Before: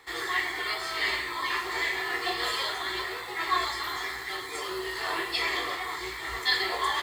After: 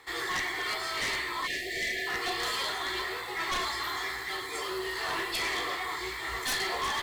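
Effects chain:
harmonic generator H 2 −8 dB, 3 −6 dB, 7 −22 dB, 8 −43 dB, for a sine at −12 dBFS
time-frequency box erased 0:01.47–0:02.07, 740–1,700 Hz
gain into a clipping stage and back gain 26 dB

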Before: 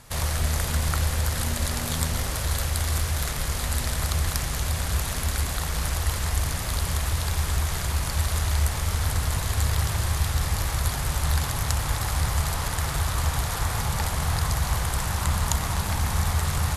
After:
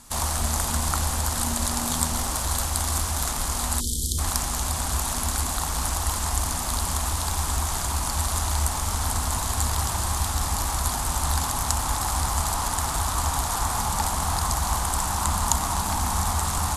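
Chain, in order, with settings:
octave-band graphic EQ 125/250/500/1,000/2,000/8,000 Hz −10/+8/−9/+4/−6/+7 dB
time-frequency box erased 0:03.80–0:04.18, 510–3,000 Hz
dynamic equaliser 780 Hz, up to +7 dB, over −48 dBFS, Q 1.1

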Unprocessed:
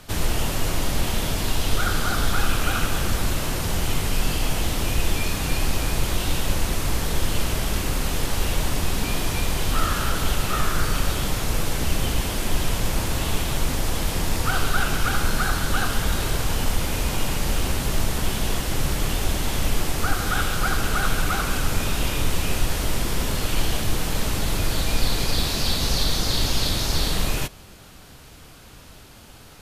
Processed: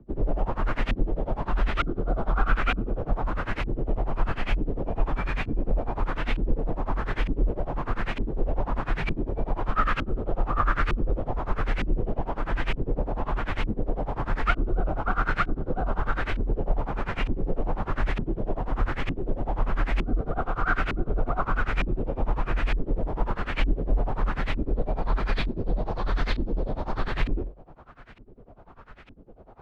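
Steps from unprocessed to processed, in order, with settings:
amplitude tremolo 10 Hz, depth 94%
auto-filter low-pass saw up 1.1 Hz 320–2,500 Hz
frequency shifter −47 Hz

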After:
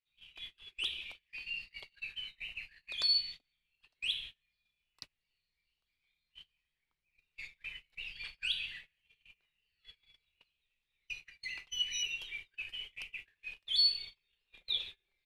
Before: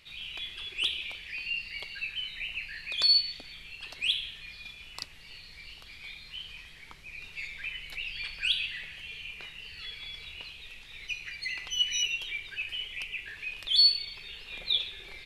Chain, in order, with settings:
noise gate −38 dBFS, range −30 dB
level −7 dB

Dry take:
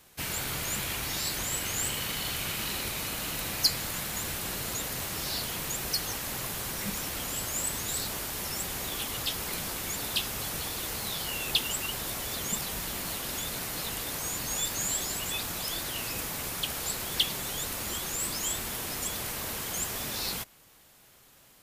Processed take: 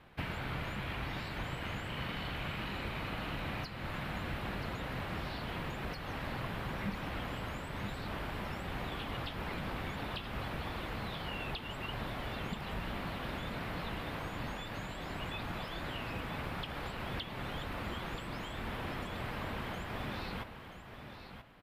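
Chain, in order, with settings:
parametric band 410 Hz −3.5 dB 0.77 octaves
downward compressor, threshold −35 dBFS, peak gain reduction 15.5 dB
high-frequency loss of the air 480 metres
single-tap delay 981 ms −9.5 dB
level +5.5 dB

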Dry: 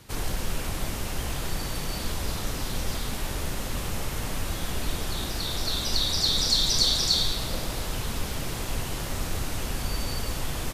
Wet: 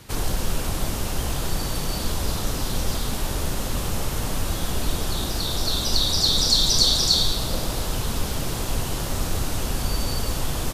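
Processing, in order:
dynamic equaliser 2,100 Hz, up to −7 dB, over −46 dBFS, Q 1.6
level +5 dB

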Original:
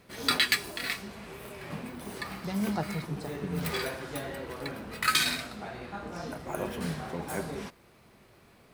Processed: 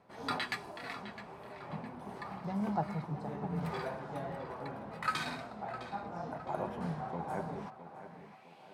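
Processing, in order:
bass and treble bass +14 dB, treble +7 dB
band-pass filter sweep 830 Hz → 2,900 Hz, 0:07.61–0:08.59
dynamic equaliser 130 Hz, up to +6 dB, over −58 dBFS, Q 0.88
tape delay 660 ms, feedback 49%, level −11.5 dB, low-pass 4,000 Hz
level +2 dB

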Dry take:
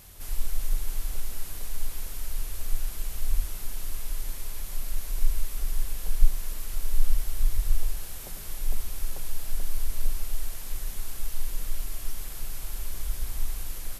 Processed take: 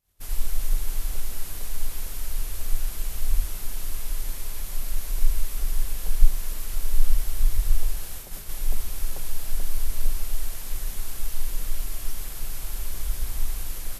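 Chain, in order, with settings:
downward expander −33 dBFS
level +3 dB

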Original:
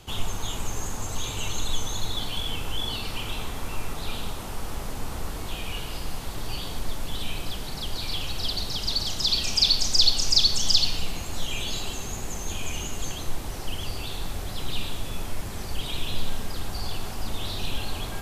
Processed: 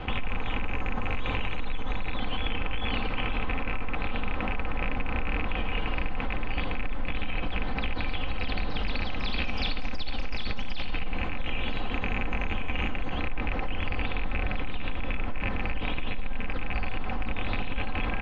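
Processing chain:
loose part that buzzes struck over −33 dBFS, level −19 dBFS
low-pass filter 2,500 Hz 24 dB per octave
comb filter 3.9 ms, depth 53%
brickwall limiter −21 dBFS, peak gain reduction 12 dB
envelope flattener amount 50%

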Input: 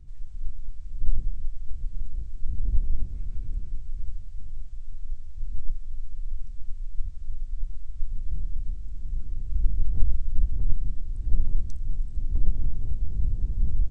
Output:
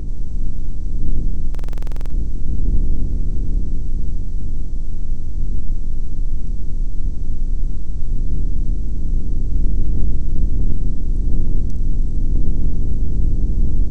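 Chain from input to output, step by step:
compressor on every frequency bin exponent 0.4
parametric band 300 Hz +13 dB 2.5 octaves
buffer that repeats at 0:01.50, samples 2,048, times 12
level +1 dB

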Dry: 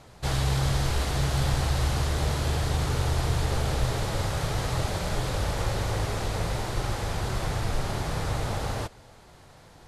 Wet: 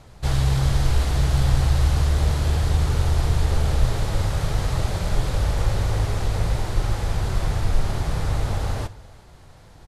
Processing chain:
low-shelf EQ 99 Hz +11 dB
single-tap delay 348 ms −23.5 dB
on a send at −18.5 dB: convolution reverb RT60 0.45 s, pre-delay 42 ms

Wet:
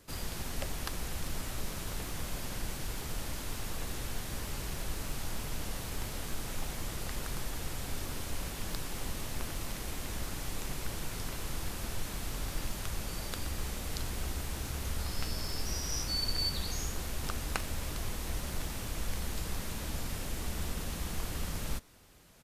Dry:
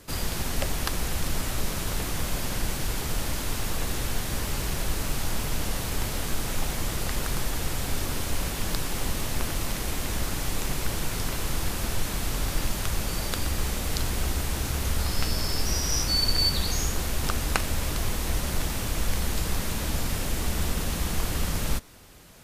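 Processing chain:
downsampling to 32,000 Hz
level −9 dB

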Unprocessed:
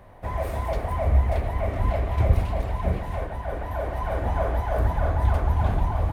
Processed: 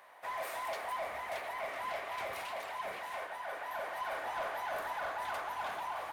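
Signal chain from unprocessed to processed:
high-pass filter 1,100 Hz 12 dB per octave
soft clipping −32.5 dBFS, distortion −16 dB
level +1 dB

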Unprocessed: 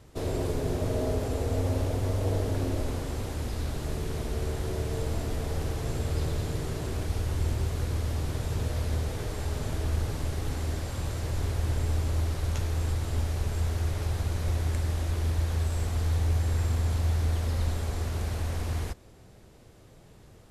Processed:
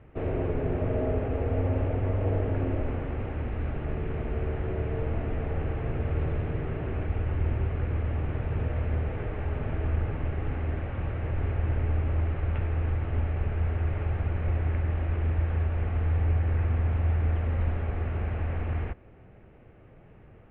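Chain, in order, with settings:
Butterworth low-pass 2,700 Hz 48 dB per octave
notch filter 1,000 Hz, Q 14
level +1 dB

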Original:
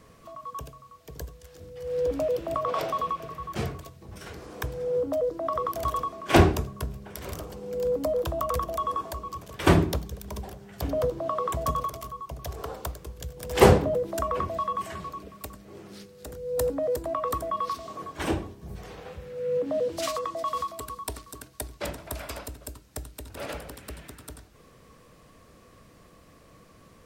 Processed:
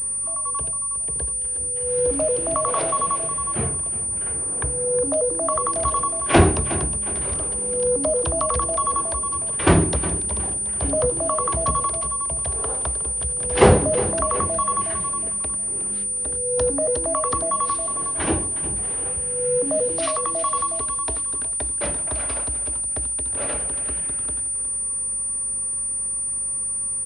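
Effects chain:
low-pass that shuts in the quiet parts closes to 2,700 Hz, open at −26 dBFS
in parallel at −3 dB: soft clipping −14.5 dBFS, distortion −12 dB
0:03.56–0:05.02: on the sum: high-frequency loss of the air 310 metres
on a send: repeating echo 363 ms, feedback 36%, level −13.5 dB
on the sum: mains hum 50 Hz, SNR 24 dB
switching amplifier with a slow clock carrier 9,300 Hz

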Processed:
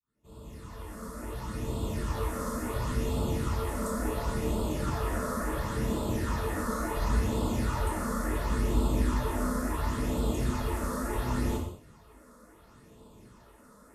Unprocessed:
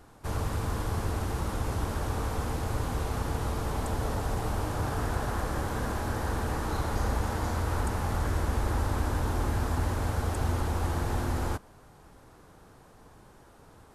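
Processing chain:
fade in at the beginning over 2.42 s
notch comb filter 770 Hz
harmonic generator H 7 −38 dB, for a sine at −19 dBFS
all-pass phaser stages 8, 0.71 Hz, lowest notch 100–1,900 Hz
reverb whose tail is shaped and stops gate 240 ms falling, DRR −3 dB

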